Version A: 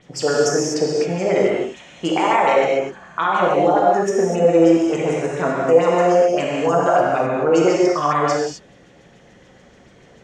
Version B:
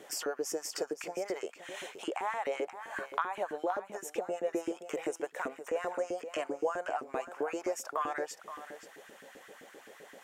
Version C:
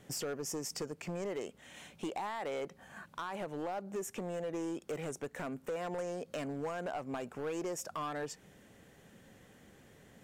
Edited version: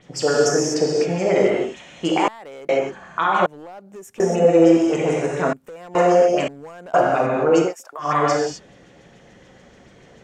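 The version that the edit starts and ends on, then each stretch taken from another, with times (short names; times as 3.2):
A
2.28–2.69 from C
3.46–4.2 from C
5.53–5.95 from C
6.48–6.94 from C
7.66–8.06 from B, crossfade 0.16 s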